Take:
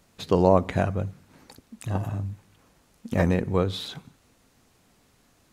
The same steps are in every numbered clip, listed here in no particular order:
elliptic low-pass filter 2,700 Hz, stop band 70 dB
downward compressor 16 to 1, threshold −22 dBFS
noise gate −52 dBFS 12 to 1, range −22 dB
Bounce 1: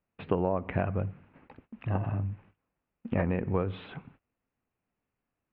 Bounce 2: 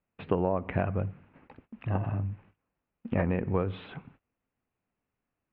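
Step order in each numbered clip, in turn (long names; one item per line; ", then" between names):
noise gate, then downward compressor, then elliptic low-pass filter
noise gate, then elliptic low-pass filter, then downward compressor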